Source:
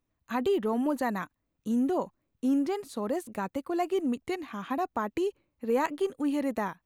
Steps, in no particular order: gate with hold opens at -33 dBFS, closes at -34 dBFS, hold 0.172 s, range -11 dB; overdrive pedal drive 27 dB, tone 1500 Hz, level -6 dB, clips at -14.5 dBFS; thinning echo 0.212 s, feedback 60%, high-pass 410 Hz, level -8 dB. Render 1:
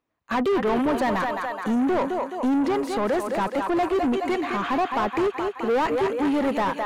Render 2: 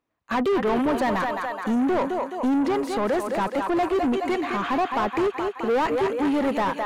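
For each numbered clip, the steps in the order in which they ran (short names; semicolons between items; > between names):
thinning echo > gate with hold > overdrive pedal; gate with hold > thinning echo > overdrive pedal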